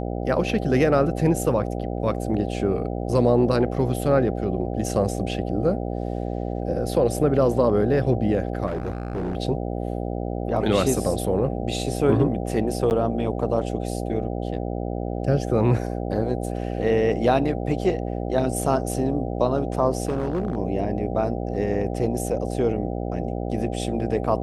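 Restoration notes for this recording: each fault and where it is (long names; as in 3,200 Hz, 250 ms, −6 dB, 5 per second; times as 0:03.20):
mains buzz 60 Hz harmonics 13 −28 dBFS
0:08.66–0:09.37: clipping −23.5 dBFS
0:12.90–0:12.91: drop-out 9.5 ms
0:20.05–0:20.58: clipping −19.5 dBFS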